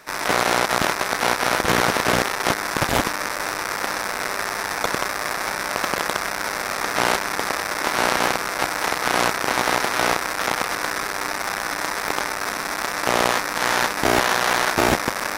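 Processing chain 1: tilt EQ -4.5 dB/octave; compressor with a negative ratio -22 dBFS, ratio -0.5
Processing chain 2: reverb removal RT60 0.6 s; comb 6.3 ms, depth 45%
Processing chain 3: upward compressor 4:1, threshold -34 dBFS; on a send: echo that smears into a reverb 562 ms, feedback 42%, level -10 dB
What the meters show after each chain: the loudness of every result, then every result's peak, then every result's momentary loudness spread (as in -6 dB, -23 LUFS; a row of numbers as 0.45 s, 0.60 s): -23.5 LUFS, -22.5 LUFS, -21.0 LUFS; -1.0 dBFS, -3.0 dBFS, -2.5 dBFS; 3 LU, 6 LU, 6 LU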